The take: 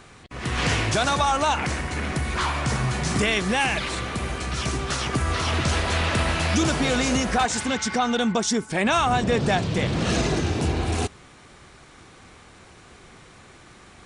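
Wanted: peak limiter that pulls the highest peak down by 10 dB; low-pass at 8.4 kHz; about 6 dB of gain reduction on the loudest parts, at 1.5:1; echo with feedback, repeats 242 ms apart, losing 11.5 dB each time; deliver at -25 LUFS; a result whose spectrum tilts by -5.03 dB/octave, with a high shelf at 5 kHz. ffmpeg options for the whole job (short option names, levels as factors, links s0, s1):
-af "lowpass=8400,highshelf=f=5000:g=-8.5,acompressor=threshold=0.0178:ratio=1.5,alimiter=level_in=1.41:limit=0.0631:level=0:latency=1,volume=0.708,aecho=1:1:242|484|726:0.266|0.0718|0.0194,volume=3.16"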